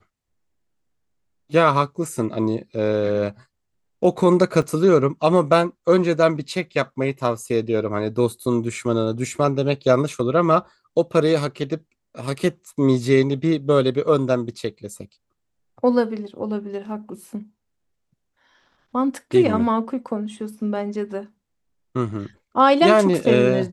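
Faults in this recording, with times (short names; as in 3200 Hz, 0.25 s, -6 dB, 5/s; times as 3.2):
4.62 gap 3.4 ms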